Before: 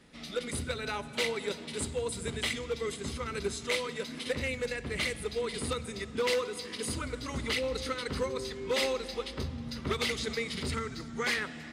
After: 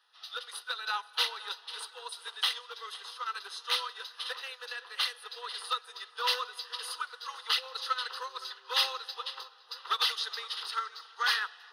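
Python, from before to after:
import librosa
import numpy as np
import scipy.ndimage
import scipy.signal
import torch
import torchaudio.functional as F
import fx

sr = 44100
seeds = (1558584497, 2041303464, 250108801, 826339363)

p1 = scipy.signal.sosfilt(scipy.signal.butter(8, 540.0, 'highpass', fs=sr, output='sos'), x)
p2 = fx.fixed_phaser(p1, sr, hz=2200.0, stages=6)
p3 = p2 + fx.echo_filtered(p2, sr, ms=515, feedback_pct=54, hz=3500.0, wet_db=-12.5, dry=0)
p4 = fx.upward_expand(p3, sr, threshold_db=-55.0, expansion=1.5)
y = p4 * librosa.db_to_amplitude(8.5)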